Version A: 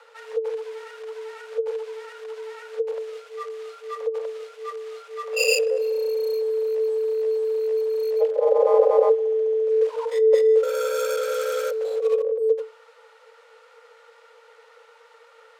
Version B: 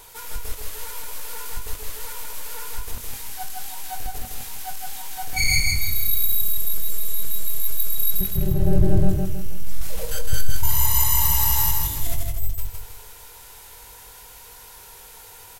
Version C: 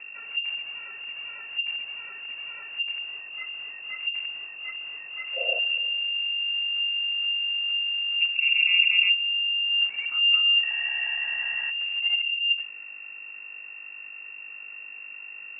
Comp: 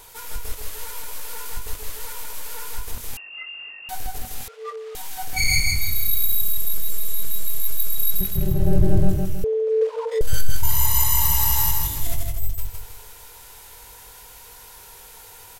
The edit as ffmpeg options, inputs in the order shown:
-filter_complex "[0:a]asplit=2[s0][s1];[1:a]asplit=4[s2][s3][s4][s5];[s2]atrim=end=3.172[s6];[2:a]atrim=start=3.168:end=3.892[s7];[s3]atrim=start=3.888:end=4.482[s8];[s0]atrim=start=4.478:end=4.952[s9];[s4]atrim=start=4.948:end=9.442[s10];[s1]atrim=start=9.438:end=10.212[s11];[s5]atrim=start=10.208[s12];[s6][s7]acrossfade=d=0.004:c1=hsin:c2=hsin[s13];[s13][s8]acrossfade=d=0.004:c1=hsin:c2=hsin[s14];[s14][s9]acrossfade=d=0.004:c1=hsin:c2=hsin[s15];[s15][s10]acrossfade=d=0.004:c1=hsin:c2=hsin[s16];[s16][s11]acrossfade=d=0.004:c1=hsin:c2=hsin[s17];[s17][s12]acrossfade=d=0.004:c1=hsin:c2=hsin"

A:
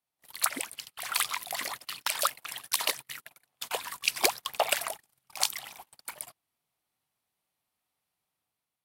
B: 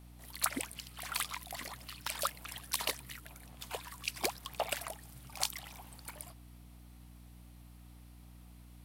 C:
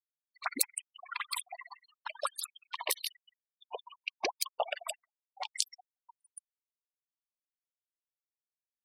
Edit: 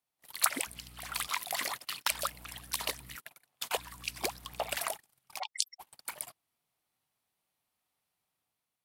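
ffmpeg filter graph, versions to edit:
-filter_complex "[1:a]asplit=3[s0][s1][s2];[0:a]asplit=5[s3][s4][s5][s6][s7];[s3]atrim=end=0.672[s8];[s0]atrim=start=0.668:end=1.282[s9];[s4]atrim=start=1.278:end=2.112[s10];[s1]atrim=start=2.108:end=3.162[s11];[s5]atrim=start=3.158:end=3.772[s12];[s2]atrim=start=3.768:end=4.772[s13];[s6]atrim=start=4.768:end=5.4[s14];[2:a]atrim=start=5.38:end=5.81[s15];[s7]atrim=start=5.79[s16];[s8][s9]acrossfade=d=0.004:c1=hsin:c2=hsin[s17];[s17][s10]acrossfade=d=0.004:c1=hsin:c2=hsin[s18];[s18][s11]acrossfade=d=0.004:c1=hsin:c2=hsin[s19];[s19][s12]acrossfade=d=0.004:c1=hsin:c2=hsin[s20];[s20][s13]acrossfade=d=0.004:c1=hsin:c2=hsin[s21];[s21][s14]acrossfade=d=0.004:c1=hsin:c2=hsin[s22];[s22][s15]acrossfade=d=0.02:c1=tri:c2=tri[s23];[s23][s16]acrossfade=d=0.02:c1=tri:c2=tri"

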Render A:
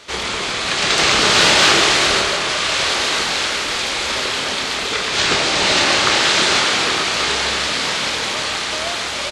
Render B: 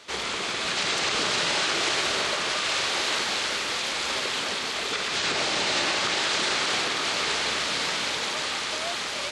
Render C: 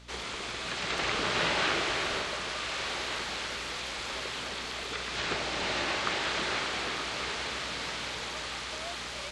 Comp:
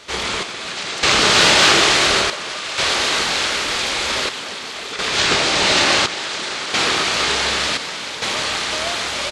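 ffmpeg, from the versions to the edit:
-filter_complex "[1:a]asplit=5[s0][s1][s2][s3][s4];[0:a]asplit=6[s5][s6][s7][s8][s9][s10];[s5]atrim=end=0.432[s11];[s0]atrim=start=0.428:end=1.032[s12];[s6]atrim=start=1.028:end=2.302[s13];[s1]atrim=start=2.298:end=2.782[s14];[s7]atrim=start=2.778:end=4.292[s15];[s2]atrim=start=4.288:end=4.992[s16];[s8]atrim=start=4.988:end=6.062[s17];[s3]atrim=start=6.058:end=6.742[s18];[s9]atrim=start=6.738:end=7.772[s19];[s4]atrim=start=7.768:end=8.222[s20];[s10]atrim=start=8.218[s21];[s11][s12]acrossfade=d=0.004:c1=hsin:c2=hsin[s22];[s22][s13]acrossfade=d=0.004:c1=hsin:c2=hsin[s23];[s23][s14]acrossfade=d=0.004:c1=hsin:c2=hsin[s24];[s24][s15]acrossfade=d=0.004:c1=hsin:c2=hsin[s25];[s25][s16]acrossfade=d=0.004:c1=hsin:c2=hsin[s26];[s26][s17]acrossfade=d=0.004:c1=hsin:c2=hsin[s27];[s27][s18]acrossfade=d=0.004:c1=hsin:c2=hsin[s28];[s28][s19]acrossfade=d=0.004:c1=hsin:c2=hsin[s29];[s29][s20]acrossfade=d=0.004:c1=hsin:c2=hsin[s30];[s30][s21]acrossfade=d=0.004:c1=hsin:c2=hsin"

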